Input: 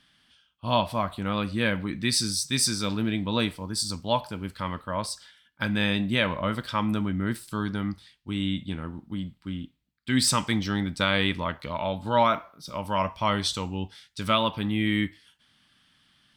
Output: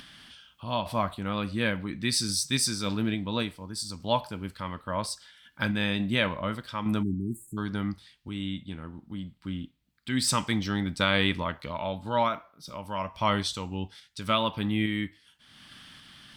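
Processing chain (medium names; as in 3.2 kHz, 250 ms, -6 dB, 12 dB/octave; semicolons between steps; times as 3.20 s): random-step tremolo; spectral selection erased 7.03–7.57 s, 410–6600 Hz; upward compressor, threshold -36 dBFS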